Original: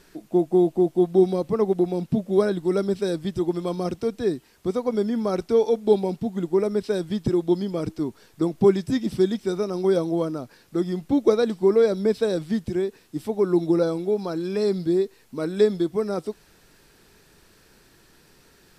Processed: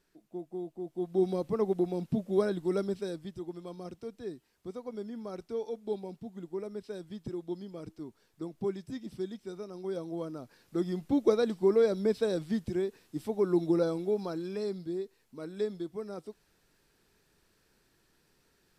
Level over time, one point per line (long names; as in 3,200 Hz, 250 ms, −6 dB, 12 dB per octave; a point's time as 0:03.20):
0:00.79 −20 dB
0:01.30 −7.5 dB
0:02.79 −7.5 dB
0:03.42 −16 dB
0:09.84 −16 dB
0:10.82 −6.5 dB
0:14.23 −6.5 dB
0:14.84 −14 dB